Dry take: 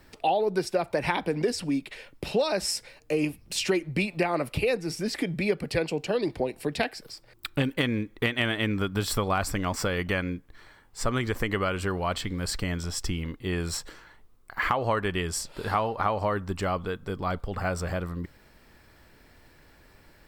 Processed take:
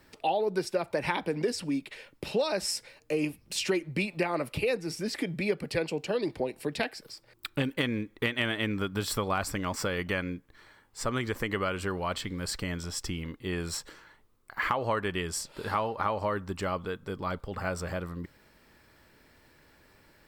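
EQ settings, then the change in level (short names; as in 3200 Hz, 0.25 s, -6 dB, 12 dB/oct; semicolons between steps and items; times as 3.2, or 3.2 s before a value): low shelf 67 Hz -9.5 dB; notch 720 Hz, Q 14; -2.5 dB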